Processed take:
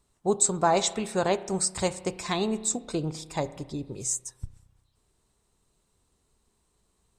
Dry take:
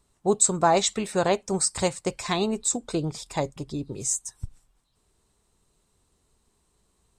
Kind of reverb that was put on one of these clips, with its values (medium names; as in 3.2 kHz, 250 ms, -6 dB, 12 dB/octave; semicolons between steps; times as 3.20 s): spring tank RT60 1.2 s, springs 32 ms, chirp 50 ms, DRR 14.5 dB; trim -2.5 dB